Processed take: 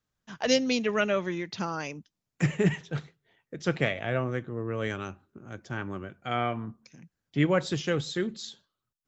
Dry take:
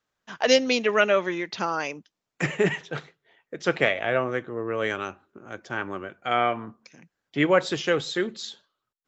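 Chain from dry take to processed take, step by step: tone controls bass +14 dB, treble +5 dB; trim -7 dB

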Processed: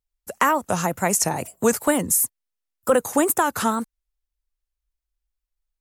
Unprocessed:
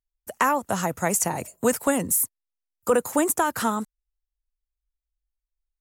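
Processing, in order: wow and flutter 120 cents; trim +2.5 dB

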